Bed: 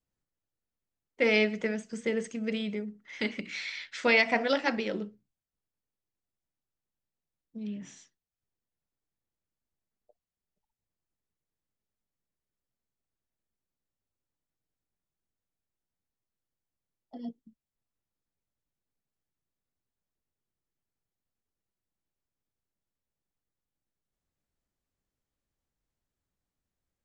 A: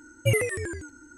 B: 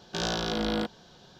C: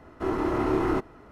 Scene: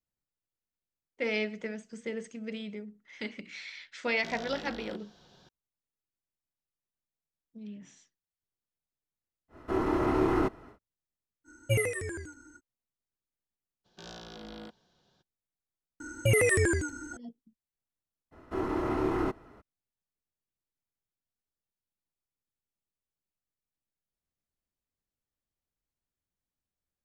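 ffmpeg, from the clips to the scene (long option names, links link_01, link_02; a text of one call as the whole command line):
ffmpeg -i bed.wav -i cue0.wav -i cue1.wav -i cue2.wav -filter_complex "[2:a]asplit=2[link_01][link_02];[3:a]asplit=2[link_03][link_04];[1:a]asplit=2[link_05][link_06];[0:a]volume=-6.5dB[link_07];[link_01]acompressor=threshold=-30dB:ratio=6:attack=0.84:release=242:knee=1:detection=peak[link_08];[link_05]aecho=1:1:79:0.0668[link_09];[link_06]alimiter=level_in=22.5dB:limit=-1dB:release=50:level=0:latency=1[link_10];[link_08]atrim=end=1.39,asetpts=PTS-STARTPTS,volume=-6dB,afade=type=in:duration=0.004:curve=hsin,afade=type=out:start_time=1.386:duration=0.004:curve=hsin,adelay=4100[link_11];[link_03]atrim=end=1.31,asetpts=PTS-STARTPTS,volume=-1.5dB,afade=type=in:duration=0.1,afade=type=out:start_time=1.21:duration=0.1,adelay=9480[link_12];[link_09]atrim=end=1.17,asetpts=PTS-STARTPTS,volume=-4.5dB,afade=type=in:duration=0.05,afade=type=out:start_time=1.12:duration=0.05,adelay=11440[link_13];[link_02]atrim=end=1.39,asetpts=PTS-STARTPTS,volume=-16.5dB,afade=type=in:duration=0.02,afade=type=out:start_time=1.37:duration=0.02,adelay=13840[link_14];[link_10]atrim=end=1.17,asetpts=PTS-STARTPTS,volume=-15dB,afade=type=in:duration=0.004:curve=hsin,afade=type=out:start_time=1.166:duration=0.004:curve=hsin,adelay=16000[link_15];[link_04]atrim=end=1.31,asetpts=PTS-STARTPTS,volume=-4.5dB,afade=type=in:duration=0.02,afade=type=out:start_time=1.29:duration=0.02,adelay=18310[link_16];[link_07][link_11][link_12][link_13][link_14][link_15][link_16]amix=inputs=7:normalize=0" out.wav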